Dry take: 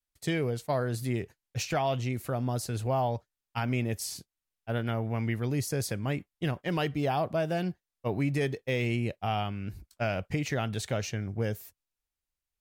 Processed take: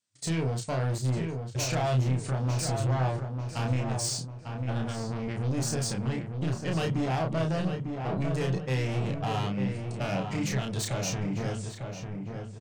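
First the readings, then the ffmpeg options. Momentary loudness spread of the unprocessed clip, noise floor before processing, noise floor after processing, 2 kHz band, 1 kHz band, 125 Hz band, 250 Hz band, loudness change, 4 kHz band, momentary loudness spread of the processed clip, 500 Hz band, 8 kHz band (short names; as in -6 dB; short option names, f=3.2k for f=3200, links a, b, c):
7 LU, under -85 dBFS, -41 dBFS, -1.5 dB, -1.0 dB, +3.5 dB, +1.5 dB, +1.0 dB, +2.5 dB, 6 LU, -1.5 dB, +5.5 dB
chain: -filter_complex "[0:a]afftfilt=real='re*between(b*sr/4096,100,9200)':imag='im*between(b*sr/4096,100,9200)':win_size=4096:overlap=0.75,bass=f=250:g=8,treble=f=4k:g=7,bandreject=f=50:t=h:w=6,bandreject=f=100:t=h:w=6,bandreject=f=150:t=h:w=6,alimiter=limit=-18.5dB:level=0:latency=1:release=270,acontrast=88,asoftclip=type=tanh:threshold=-23.5dB,asplit=2[a][b];[b]adelay=31,volume=-3.5dB[c];[a][c]amix=inputs=2:normalize=0,asplit=2[d][e];[e]adelay=899,lowpass=f=2.1k:p=1,volume=-5.5dB,asplit=2[f][g];[g]adelay=899,lowpass=f=2.1k:p=1,volume=0.43,asplit=2[h][i];[i]adelay=899,lowpass=f=2.1k:p=1,volume=0.43,asplit=2[j][k];[k]adelay=899,lowpass=f=2.1k:p=1,volume=0.43,asplit=2[l][m];[m]adelay=899,lowpass=f=2.1k:p=1,volume=0.43[n];[d][f][h][j][l][n]amix=inputs=6:normalize=0,volume=-4dB"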